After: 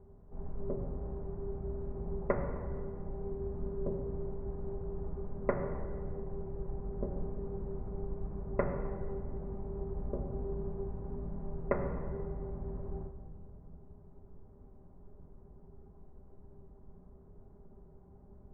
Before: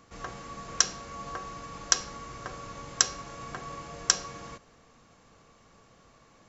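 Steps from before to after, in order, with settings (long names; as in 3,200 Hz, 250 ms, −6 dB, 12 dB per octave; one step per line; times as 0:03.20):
change of speed 0.35×
inverse Chebyshev low-pass filter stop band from 3,500 Hz, stop band 60 dB
low-shelf EQ 120 Hz +11 dB
rectangular room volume 3,000 cubic metres, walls mixed, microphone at 1.3 metres
level −4 dB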